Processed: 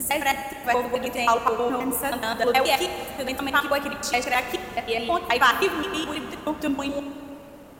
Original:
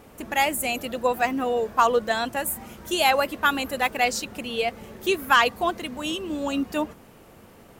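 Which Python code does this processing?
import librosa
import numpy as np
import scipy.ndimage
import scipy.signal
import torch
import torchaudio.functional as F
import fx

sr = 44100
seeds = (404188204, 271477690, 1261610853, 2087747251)

y = fx.block_reorder(x, sr, ms=106.0, group=6)
y = fx.rev_plate(y, sr, seeds[0], rt60_s=3.3, hf_ratio=0.6, predelay_ms=0, drr_db=8.0)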